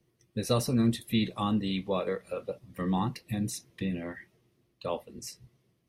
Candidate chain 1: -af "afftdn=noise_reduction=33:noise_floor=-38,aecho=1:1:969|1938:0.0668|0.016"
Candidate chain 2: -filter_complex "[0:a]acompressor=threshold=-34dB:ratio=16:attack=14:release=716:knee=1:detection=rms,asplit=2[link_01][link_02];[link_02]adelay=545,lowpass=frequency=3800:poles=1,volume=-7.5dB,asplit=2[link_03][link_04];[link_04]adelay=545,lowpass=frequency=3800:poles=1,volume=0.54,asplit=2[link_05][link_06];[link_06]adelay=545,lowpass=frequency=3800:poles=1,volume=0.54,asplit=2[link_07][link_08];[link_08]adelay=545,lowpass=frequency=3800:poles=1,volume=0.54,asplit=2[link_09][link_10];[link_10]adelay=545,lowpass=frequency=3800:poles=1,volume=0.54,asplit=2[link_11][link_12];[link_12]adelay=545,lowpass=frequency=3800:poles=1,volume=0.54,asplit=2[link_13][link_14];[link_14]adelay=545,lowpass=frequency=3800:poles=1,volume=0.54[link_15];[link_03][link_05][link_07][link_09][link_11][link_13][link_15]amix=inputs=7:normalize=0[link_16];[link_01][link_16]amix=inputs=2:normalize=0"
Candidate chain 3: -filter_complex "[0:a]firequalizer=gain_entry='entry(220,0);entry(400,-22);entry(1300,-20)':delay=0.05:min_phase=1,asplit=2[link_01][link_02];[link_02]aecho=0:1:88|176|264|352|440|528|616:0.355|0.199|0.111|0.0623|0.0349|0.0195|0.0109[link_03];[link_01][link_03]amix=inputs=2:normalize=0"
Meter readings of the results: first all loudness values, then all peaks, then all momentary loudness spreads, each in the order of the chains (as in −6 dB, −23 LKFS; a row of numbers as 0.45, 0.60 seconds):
−32.0, −42.0, −32.5 LKFS; −14.0, −26.5, −15.5 dBFS; 14, 7, 23 LU